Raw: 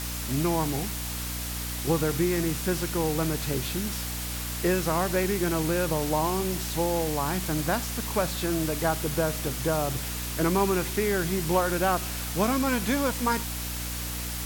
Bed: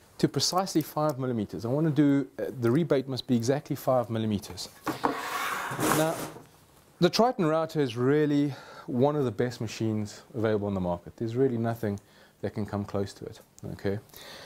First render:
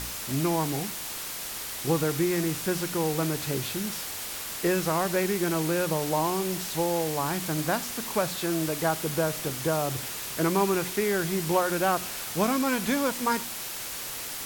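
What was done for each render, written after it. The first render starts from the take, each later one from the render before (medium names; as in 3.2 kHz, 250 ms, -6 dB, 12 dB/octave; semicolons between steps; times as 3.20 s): de-hum 60 Hz, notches 5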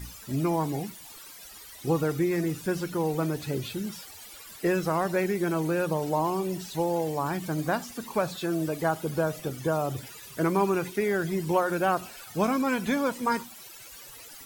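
noise reduction 16 dB, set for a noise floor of -36 dBFS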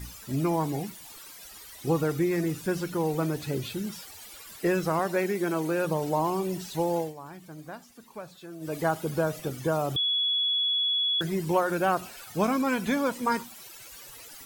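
4.99–5.85 s: high-pass 190 Hz; 6.98–8.76 s: dip -14 dB, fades 0.16 s; 9.96–11.21 s: bleep 3.38 kHz -23 dBFS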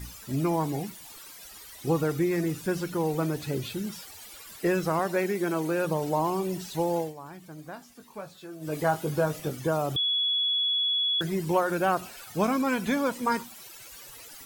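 7.74–9.55 s: doubling 20 ms -7 dB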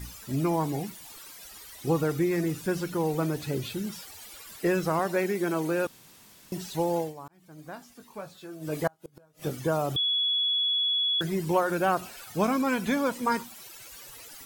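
5.87–6.52 s: room tone; 7.28–7.72 s: fade in; 8.87–9.47 s: inverted gate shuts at -20 dBFS, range -35 dB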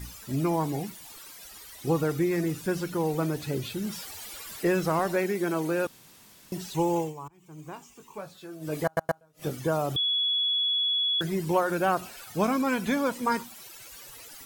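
3.82–5.16 s: companding laws mixed up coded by mu; 6.74–8.18 s: rippled EQ curve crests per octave 0.71, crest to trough 10 dB; 8.85 s: stutter in place 0.12 s, 3 plays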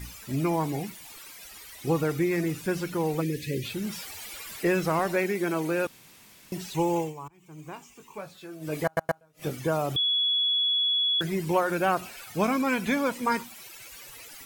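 peaking EQ 2.3 kHz +5.5 dB 0.6 oct; 3.21–3.65 s: time-frequency box 570–1600 Hz -25 dB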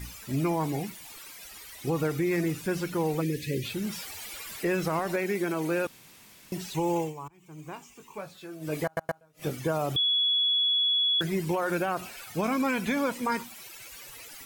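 peak limiter -19 dBFS, peak gain reduction 7.5 dB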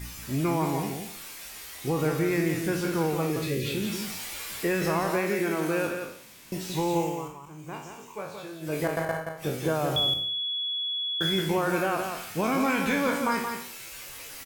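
spectral sustain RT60 0.55 s; delay 175 ms -6 dB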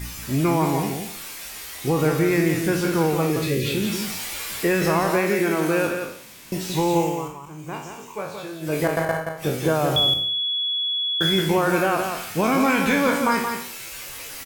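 trim +6 dB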